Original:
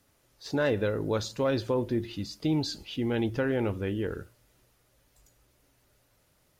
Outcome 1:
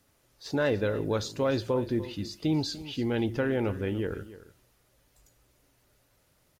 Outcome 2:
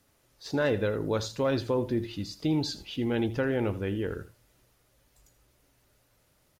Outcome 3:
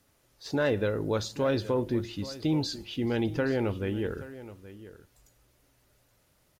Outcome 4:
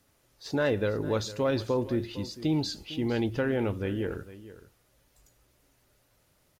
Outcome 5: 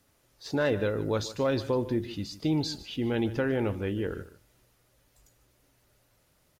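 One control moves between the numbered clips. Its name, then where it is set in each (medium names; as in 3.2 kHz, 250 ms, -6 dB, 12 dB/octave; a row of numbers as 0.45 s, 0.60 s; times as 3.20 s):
delay, time: 294 ms, 81 ms, 825 ms, 455 ms, 150 ms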